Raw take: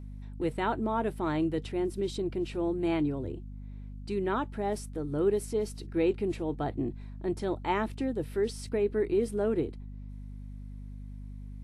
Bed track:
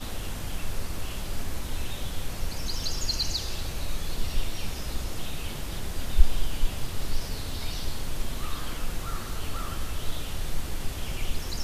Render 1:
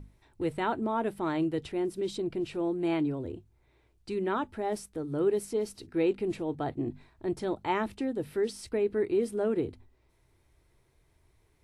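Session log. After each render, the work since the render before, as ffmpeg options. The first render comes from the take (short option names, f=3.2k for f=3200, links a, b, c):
-af "bandreject=f=50:t=h:w=6,bandreject=f=100:t=h:w=6,bandreject=f=150:t=h:w=6,bandreject=f=200:t=h:w=6,bandreject=f=250:t=h:w=6"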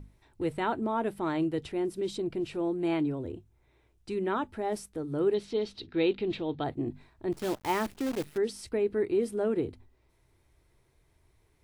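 -filter_complex "[0:a]asettb=1/sr,asplit=3[a][b][c];[a]atrim=end=3.064[d];[b]atrim=start=3.06:end=4.45,asetpts=PTS-STARTPTS,afade=t=in:d=0.004:c=qsin,afade=t=out:st=1.386:d=0.004:c=qsin,bandreject=f=4.5k:w=12[e];[c]atrim=start=4.446[f];[d][e]acrossfade=d=0.004:c1=hsin:c2=qsin[g];[g][f]acrossfade=d=0.004:c1=qsin:c2=hsin,asettb=1/sr,asplit=3[h][i][j];[h]atrim=end=5.344[k];[i]atrim=start=5.34:end=6.64,asetpts=PTS-STARTPTS,afade=t=in:d=0.004:c=qsin,afade=t=out:st=1.296:d=0.004:c=qsin,lowpass=f=3.7k:t=q:w=3.8[l];[j]atrim=start=6.636[m];[k][l]acrossfade=d=0.004:c1=hsin:c2=qsin[n];[n][m]acrossfade=d=0.004:c1=qsin:c2=hsin,asplit=3[o][p][q];[o]afade=t=out:st=7.32:d=0.02[r];[p]acrusher=bits=7:dc=4:mix=0:aa=0.000001,afade=t=in:st=7.32:d=0.02,afade=t=out:st=8.36:d=0.02[s];[q]afade=t=in:st=8.36:d=0.02[t];[r][s][t]amix=inputs=3:normalize=0"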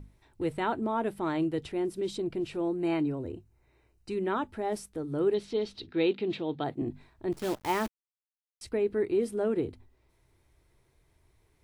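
-filter_complex "[0:a]asettb=1/sr,asplit=3[a][b][c];[a]atrim=end=2.684[d];[b]atrim=start=2.68:end=4.11,asetpts=PTS-STARTPTS,afade=t=in:d=0.004:c=qsin,afade=t=out:st=1.426:d=0.004:c=qsin,asuperstop=centerf=3400:order=8:qfactor=7.3[e];[c]atrim=start=4.106[f];[d][e]acrossfade=d=0.004:c1=hsin:c2=qsin[g];[g][f]acrossfade=d=0.004:c1=qsin:c2=hsin,asettb=1/sr,asplit=3[h][i][j];[h]atrim=end=5.924[k];[i]atrim=start=5.92:end=6.82,asetpts=PTS-STARTPTS,afade=t=in:d=0.004:c=qsin,afade=t=out:st=0.896:d=0.004:c=qsin,highpass=f=120:w=0.5412,highpass=f=120:w=1.3066[l];[j]atrim=start=6.816[m];[k][l]acrossfade=d=0.004:c1=hsin:c2=qsin[n];[n][m]acrossfade=d=0.004:c1=qsin:c2=hsin,asplit=3[o][p][q];[o]atrim=end=7.88,asetpts=PTS-STARTPTS,afade=t=out:st=7.876:d=0.004:c=hsin[r];[p]atrim=start=7.88:end=8.61,asetpts=PTS-STARTPTS,volume=0[s];[q]atrim=start=8.61,asetpts=PTS-STARTPTS,afade=t=in:d=0.004:c=hsin[t];[r][s][t]concat=n=3:v=0:a=1"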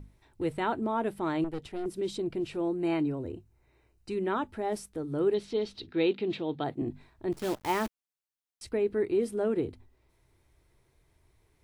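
-filter_complex "[0:a]asettb=1/sr,asplit=3[a][b][c];[a]atrim=end=1.444[d];[b]atrim=start=1.44:end=1.86,asetpts=PTS-STARTPTS,afade=t=in:d=0.004:c=qsin,afade=t=out:st=0.416:d=0.004:c=qsin,aeval=exprs='(tanh(35.5*val(0)+0.7)-tanh(0.7))/35.5':c=same[e];[c]atrim=start=1.856[f];[d][e]acrossfade=d=0.004:c1=hsin:c2=qsin[g];[g][f]acrossfade=d=0.004:c1=qsin:c2=hsin"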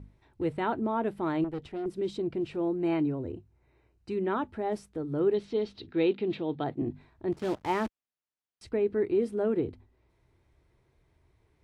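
-af "highpass=f=260:p=1,aemphasis=mode=reproduction:type=bsi"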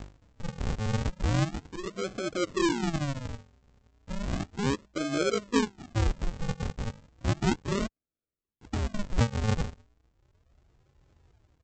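-af "aphaser=in_gain=1:out_gain=1:delay=4.6:decay=0.47:speed=0.27:type=triangular,aresample=16000,acrusher=samples=33:mix=1:aa=0.000001:lfo=1:lforange=33:lforate=0.34,aresample=44100"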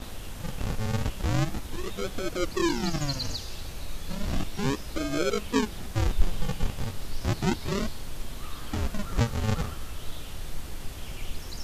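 -filter_complex "[1:a]volume=-5dB[a];[0:a][a]amix=inputs=2:normalize=0"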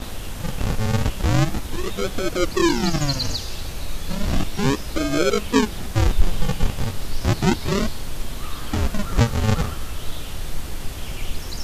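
-af "volume=7.5dB,alimiter=limit=-3dB:level=0:latency=1"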